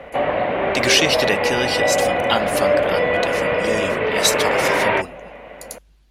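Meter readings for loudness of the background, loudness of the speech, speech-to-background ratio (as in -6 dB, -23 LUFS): -19.5 LUFS, -22.0 LUFS, -2.5 dB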